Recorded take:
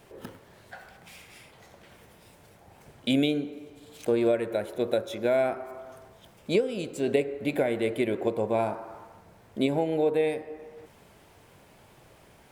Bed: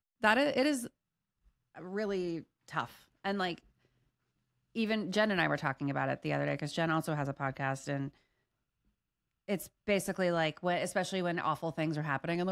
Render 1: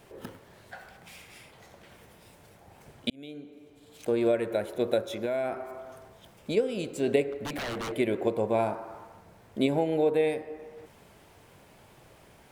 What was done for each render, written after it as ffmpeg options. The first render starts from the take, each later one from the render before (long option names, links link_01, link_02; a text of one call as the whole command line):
ffmpeg -i in.wav -filter_complex "[0:a]asplit=3[link_01][link_02][link_03];[link_01]afade=type=out:start_time=5.13:duration=0.02[link_04];[link_02]acompressor=threshold=-26dB:ratio=5:attack=3.2:release=140:knee=1:detection=peak,afade=type=in:start_time=5.13:duration=0.02,afade=type=out:start_time=6.56:duration=0.02[link_05];[link_03]afade=type=in:start_time=6.56:duration=0.02[link_06];[link_04][link_05][link_06]amix=inputs=3:normalize=0,asettb=1/sr,asplit=3[link_07][link_08][link_09];[link_07]atrim=end=7.324[link_10];[link_08]atrim=start=7.32:end=7.92,asetpts=PTS-STARTPTS,afade=type=in:duration=0.004:curve=qsin,afade=type=out:start_time=0.596:duration=0.004:curve=qsin,aeval=exprs='0.0355*(abs(mod(val(0)/0.0355+3,4)-2)-1)':channel_layout=same[link_11];[link_09]atrim=start=7.916[link_12];[link_10][link_11]acrossfade=duration=0.004:curve1=hsin:curve2=qsin[link_13];[link_13][link_12]acrossfade=duration=0.004:curve1=qsin:curve2=hsin,asplit=2[link_14][link_15];[link_14]atrim=end=3.1,asetpts=PTS-STARTPTS,afade=type=out:start_time=3.096:duration=0.004:curve=hsin[link_16];[link_15]atrim=start=3.1,asetpts=PTS-STARTPTS,afade=type=in:duration=1.33[link_17];[link_16][link_17]concat=n=2:v=0:a=1" out.wav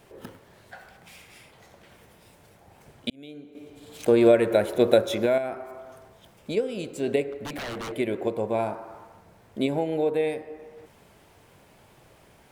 ffmpeg -i in.wav -filter_complex "[0:a]asplit=3[link_01][link_02][link_03];[link_01]atrim=end=3.552[link_04];[link_02]atrim=start=3.548:end=5.382,asetpts=PTS-STARTPTS,volume=8dB[link_05];[link_03]atrim=start=5.378[link_06];[link_04][link_05]acrossfade=duration=0.004:curve1=hsin:curve2=hsin[link_07];[link_07][link_06]acrossfade=duration=0.004:curve1=hsin:curve2=hsin" out.wav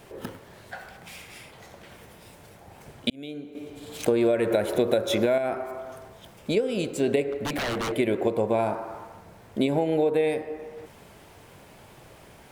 ffmpeg -i in.wav -filter_complex "[0:a]asplit=2[link_01][link_02];[link_02]alimiter=limit=-15.5dB:level=0:latency=1:release=36,volume=-1dB[link_03];[link_01][link_03]amix=inputs=2:normalize=0,acompressor=threshold=-19dB:ratio=6" out.wav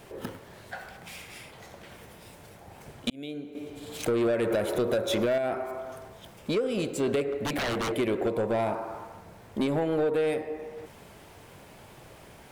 ffmpeg -i in.wav -af "asoftclip=type=tanh:threshold=-20.5dB" out.wav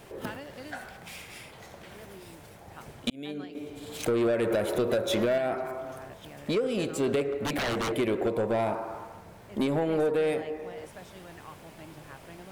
ffmpeg -i in.wav -i bed.wav -filter_complex "[1:a]volume=-15dB[link_01];[0:a][link_01]amix=inputs=2:normalize=0" out.wav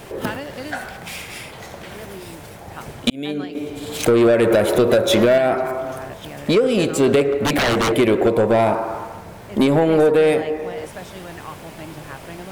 ffmpeg -i in.wav -af "volume=11.5dB" out.wav